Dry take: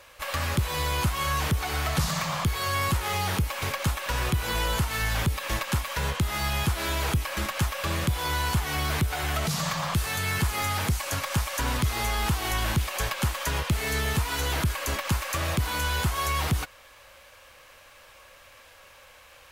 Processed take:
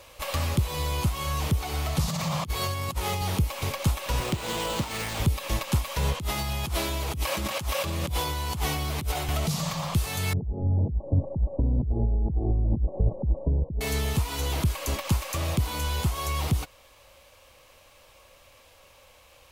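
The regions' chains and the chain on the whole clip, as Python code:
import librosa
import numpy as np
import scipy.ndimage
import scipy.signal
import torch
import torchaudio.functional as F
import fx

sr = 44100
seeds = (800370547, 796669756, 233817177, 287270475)

y = fx.chain(x, sr, fx.highpass(hz=100.0, slope=12),
    fx.low_shelf(hz=150.0, db=8.0),
    fx.over_compress(threshold_db=-28.0, ratio=-0.5), at=(2.08, 3.22))
y = fx.chain(y, sr, fx.highpass(hz=160.0, slope=12),
    fx.resample_bad(factor=4, down='none', up='hold'),
    fx.doppler_dist(depth_ms=0.61), at=(4.2, 5.2))
y = fx.chain(y, sr, fx.highpass(hz=60.0, slope=24),
    fx.over_compress(threshold_db=-33.0, ratio=-1.0), at=(6.19, 9.29))
y = fx.chain(y, sr, fx.gaussian_blur(sigma=18.0),
    fx.over_compress(threshold_db=-32.0, ratio=-1.0), at=(10.33, 13.81))
y = fx.peak_eq(y, sr, hz=1600.0, db=-9.0, octaves=0.72)
y = fx.rider(y, sr, range_db=10, speed_s=0.5)
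y = fx.low_shelf(y, sr, hz=490.0, db=3.5)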